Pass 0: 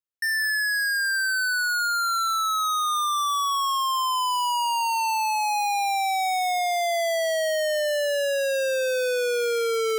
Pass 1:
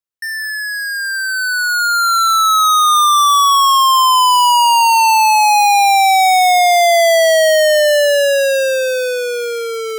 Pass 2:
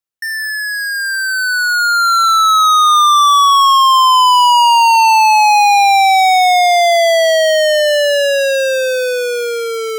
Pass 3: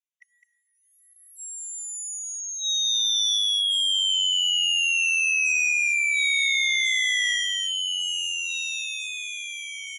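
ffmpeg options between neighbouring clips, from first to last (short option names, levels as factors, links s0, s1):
-af "dynaudnorm=f=420:g=9:m=3.98,volume=1.26"
-filter_complex "[0:a]acrossover=split=740|5900[s0][s1][s2];[s0]volume=7.94,asoftclip=hard,volume=0.126[s3];[s2]alimiter=limit=0.0668:level=0:latency=1[s4];[s3][s1][s4]amix=inputs=3:normalize=0,volume=1.26"
-af "aecho=1:1:208:0.447,aresample=22050,aresample=44100,afftfilt=real='re*eq(mod(floor(b*sr/1024/1900),2),1)':imag='im*eq(mod(floor(b*sr/1024/1900),2),1)':win_size=1024:overlap=0.75,volume=0.562"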